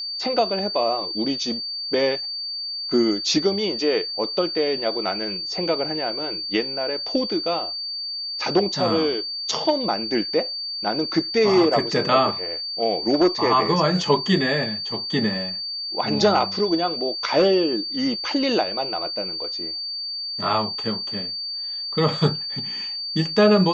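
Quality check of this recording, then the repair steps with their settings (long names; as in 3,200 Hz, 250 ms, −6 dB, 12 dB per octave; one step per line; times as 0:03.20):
whistle 4,600 Hz −27 dBFS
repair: notch filter 4,600 Hz, Q 30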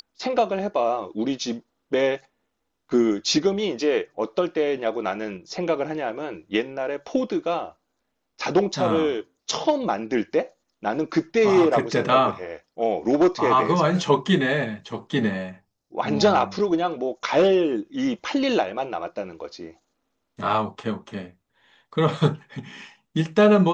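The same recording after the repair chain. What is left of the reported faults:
none of them is left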